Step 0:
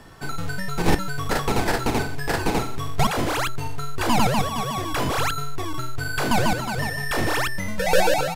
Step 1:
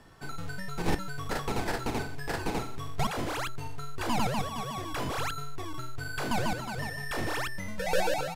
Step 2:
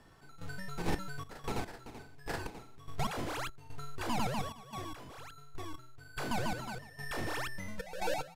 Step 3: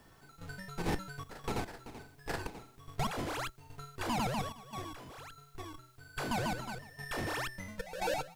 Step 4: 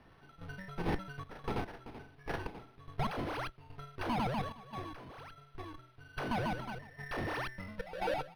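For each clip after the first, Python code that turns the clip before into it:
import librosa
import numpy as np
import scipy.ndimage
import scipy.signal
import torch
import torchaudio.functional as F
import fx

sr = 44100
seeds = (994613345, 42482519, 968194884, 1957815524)

y1 = fx.high_shelf(x, sr, hz=12000.0, db=-3.5)
y1 = y1 * librosa.db_to_amplitude(-9.0)
y2 = fx.step_gate(y1, sr, bpm=73, pattern='x.xxxx.x...x..xx', floor_db=-12.0, edge_ms=4.5)
y2 = y2 * librosa.db_to_amplitude(-5.0)
y3 = fx.cheby_harmonics(y2, sr, harmonics=(6,), levels_db=(-26,), full_scale_db=-20.5)
y3 = fx.quant_dither(y3, sr, seeds[0], bits=12, dither='triangular')
y4 = np.interp(np.arange(len(y3)), np.arange(len(y3))[::6], y3[::6])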